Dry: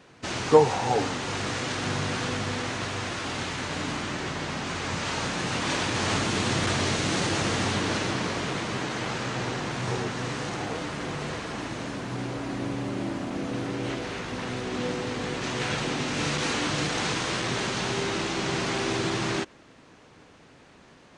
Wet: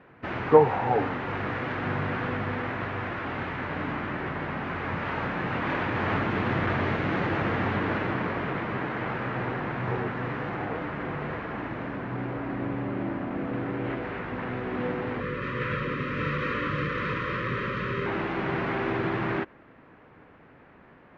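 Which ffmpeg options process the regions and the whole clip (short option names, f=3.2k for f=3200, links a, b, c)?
-filter_complex "[0:a]asettb=1/sr,asplit=3[a][b][c];[a]atrim=end=15.204[d];[b]atrim=start=15.2:end=18.06,asetpts=PTS-STARTPTS,afade=t=in:d=0.004:c=qsin,afade=t=out:st=2.856:d=0.004:c=qsin,asuperstop=centerf=750:order=20:qfactor=2,aecho=1:1:1.6:0.36,atrim=end_sample=126126[e];[c]atrim=start=18.056[f];[d][e]acrossfade=d=0.004:c1=hsin:c2=qsin[g];[g][f]acrossfade=d=0.004:c1=qsin:c2=hsin,lowpass=f=2k:w=0.5412,lowpass=f=2k:w=1.3066,aemphasis=mode=production:type=75kf"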